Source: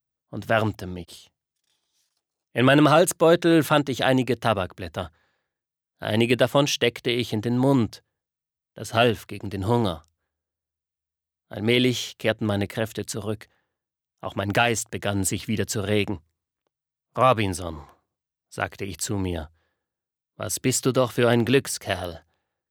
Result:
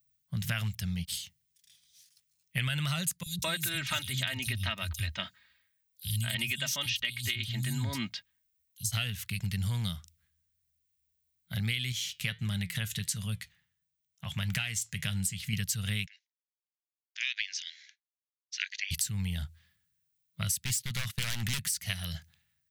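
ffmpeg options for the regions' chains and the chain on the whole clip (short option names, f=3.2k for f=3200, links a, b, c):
-filter_complex "[0:a]asettb=1/sr,asplit=3[a][b][c];[a]atrim=end=3.234[d];[b]atrim=start=3.23:end=8.92,asetpts=PTS-STARTPTS,afade=t=in:d=0.004:c=qsin,afade=t=out:st=5.686:d=0.004:c=qsin,aecho=1:1:3.2:0.7,atrim=end_sample=250929,acrossover=split=180|4600[e][f][g];[e]adelay=30[h];[f]adelay=210[i];[h][i][g]amix=inputs=3:normalize=0,atrim=end_sample=250929[j];[c]atrim=start=8.916[k];[d][j]acrossfade=d=0.004:c1=hsin:c2=qsin[l];[l][k]acrossfade=d=0.004:c1=qsin:c2=hsin,asettb=1/sr,asplit=3[m][n][o];[m]atrim=end=11.924[p];[n]atrim=start=11.92:end=15.53,asetpts=PTS-STARTPTS,afade=t=in:d=0.004:c=qsin,afade=t=out:st=3.606:d=0.004:c=qsin,equalizer=f=15k:t=o:w=0.27:g=-8.5,flanger=delay=5.1:depth=2.1:regen=80:speed=1.5:shape=triangular[q];[o]atrim=start=15.526[r];[p][q]acrossfade=d=0.004:c1=hsin:c2=qsin[s];[s][r]acrossfade=d=0.004:c1=qsin:c2=hsin,asettb=1/sr,asplit=3[t][u][v];[t]atrim=end=16.064[w];[u]atrim=start=16.06:end=18.91,asetpts=PTS-STARTPTS,afade=t=in:d=0.004:c=qsin,afade=t=out:st=2.846:d=0.004:c=qsin,agate=range=-33dB:threshold=-52dB:ratio=3:release=100:detection=peak,asuperpass=centerf=3300:order=20:qfactor=0.65[x];[v]atrim=start=18.906[y];[w][x]acrossfade=d=0.004:c1=hsin:c2=qsin[z];[z][y]acrossfade=d=0.004:c1=qsin:c2=hsin,asettb=1/sr,asplit=3[aa][ab][ac];[aa]atrim=end=20.644[ad];[ab]atrim=start=20.64:end=21.64,asetpts=PTS-STARTPTS,afade=t=in:d=0.004:c=qsin,afade=t=out:st=0.996:d=0.004:c=qsin,agate=range=-25dB:threshold=-34dB:ratio=16:release=100:detection=peak,aeval=exprs='0.126*(abs(mod(val(0)/0.126+3,4)-2)-1)':c=same[ae];[ac]atrim=start=21.636[af];[ad][ae]acrossfade=d=0.004:c1=hsin:c2=qsin[ag];[ag][af]acrossfade=d=0.004:c1=qsin:c2=hsin,firequalizer=gain_entry='entry(180,0);entry(290,-29);entry(2000,0);entry(12000,6)':delay=0.05:min_phase=1,acompressor=threshold=-36dB:ratio=10,volume=7dB"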